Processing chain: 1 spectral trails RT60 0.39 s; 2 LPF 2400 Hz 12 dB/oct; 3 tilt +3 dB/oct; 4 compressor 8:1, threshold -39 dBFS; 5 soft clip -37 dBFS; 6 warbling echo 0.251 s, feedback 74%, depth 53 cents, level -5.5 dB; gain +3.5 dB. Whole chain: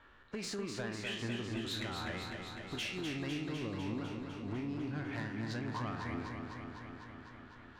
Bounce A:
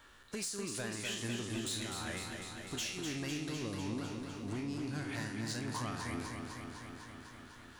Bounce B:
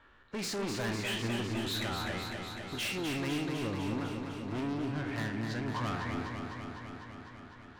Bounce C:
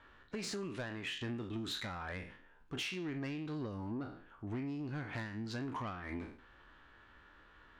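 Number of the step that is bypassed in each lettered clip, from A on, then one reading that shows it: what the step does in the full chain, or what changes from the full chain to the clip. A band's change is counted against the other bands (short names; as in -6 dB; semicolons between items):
2, 8 kHz band +10.5 dB; 4, crest factor change -1.5 dB; 6, momentary loudness spread change +12 LU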